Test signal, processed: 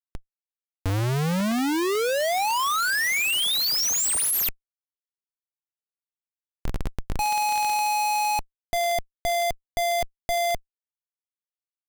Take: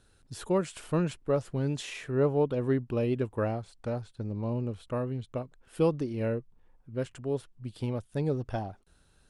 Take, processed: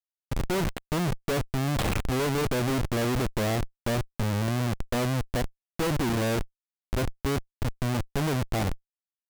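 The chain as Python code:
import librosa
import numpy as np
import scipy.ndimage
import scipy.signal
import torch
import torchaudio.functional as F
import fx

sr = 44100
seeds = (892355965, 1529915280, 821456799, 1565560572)

y = fx.dmg_crackle(x, sr, seeds[0], per_s=440.0, level_db=-42.0)
y = fx.schmitt(y, sr, flips_db=-34.5)
y = y * librosa.db_to_amplitude(6.0)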